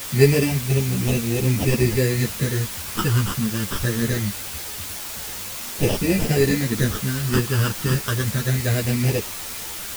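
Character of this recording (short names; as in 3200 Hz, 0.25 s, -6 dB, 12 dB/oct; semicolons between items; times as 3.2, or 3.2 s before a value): aliases and images of a low sample rate 2200 Hz, jitter 0%; phasing stages 12, 0.23 Hz, lowest notch 690–1500 Hz; a quantiser's noise floor 6-bit, dither triangular; a shimmering, thickened sound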